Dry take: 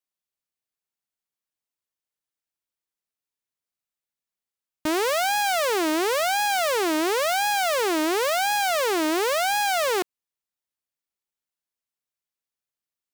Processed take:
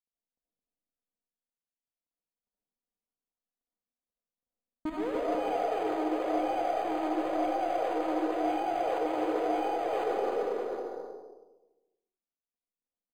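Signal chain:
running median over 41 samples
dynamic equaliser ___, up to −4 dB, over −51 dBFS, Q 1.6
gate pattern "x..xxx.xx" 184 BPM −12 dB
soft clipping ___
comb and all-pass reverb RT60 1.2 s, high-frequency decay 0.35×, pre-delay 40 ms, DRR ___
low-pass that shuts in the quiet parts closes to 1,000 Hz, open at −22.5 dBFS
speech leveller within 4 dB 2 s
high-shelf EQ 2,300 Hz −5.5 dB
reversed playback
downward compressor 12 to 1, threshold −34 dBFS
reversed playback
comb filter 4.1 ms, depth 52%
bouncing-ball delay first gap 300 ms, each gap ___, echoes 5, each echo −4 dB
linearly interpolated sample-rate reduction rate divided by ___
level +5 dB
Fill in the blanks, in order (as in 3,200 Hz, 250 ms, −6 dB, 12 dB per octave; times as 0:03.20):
4,600 Hz, −23 dBFS, −5 dB, 0.65×, 8×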